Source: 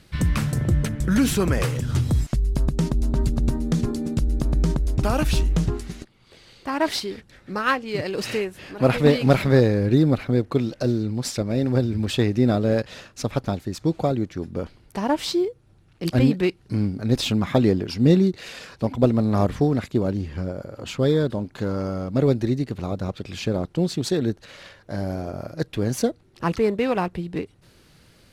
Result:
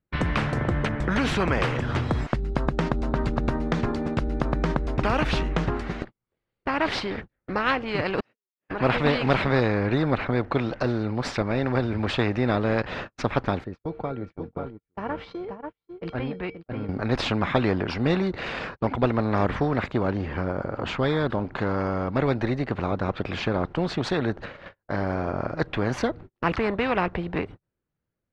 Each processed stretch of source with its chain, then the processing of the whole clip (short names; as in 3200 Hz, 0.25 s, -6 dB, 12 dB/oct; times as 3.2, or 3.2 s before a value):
8.2–8.69 HPF 200 Hz + level quantiser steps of 18 dB + flipped gate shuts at -30 dBFS, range -40 dB
13.64–16.89 LPF 4800 Hz + resonator 460 Hz, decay 0.31 s, harmonics odd, mix 80% + echo 0.534 s -8.5 dB
whole clip: gate -41 dBFS, range -44 dB; LPF 1600 Hz 12 dB/oct; spectral compressor 2:1; gain +1 dB